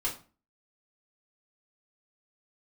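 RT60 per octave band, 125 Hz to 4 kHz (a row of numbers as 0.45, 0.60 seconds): 0.45, 0.45, 0.40, 0.35, 0.30, 0.30 seconds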